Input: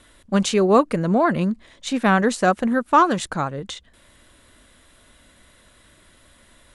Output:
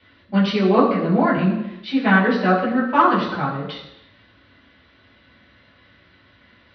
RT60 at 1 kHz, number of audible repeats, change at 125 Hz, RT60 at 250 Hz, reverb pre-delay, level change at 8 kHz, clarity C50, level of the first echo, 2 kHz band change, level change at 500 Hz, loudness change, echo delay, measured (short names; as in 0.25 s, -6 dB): 0.85 s, none, +2.5 dB, 0.85 s, 5 ms, under -20 dB, 5.5 dB, none, +3.5 dB, -0.5 dB, +1.0 dB, none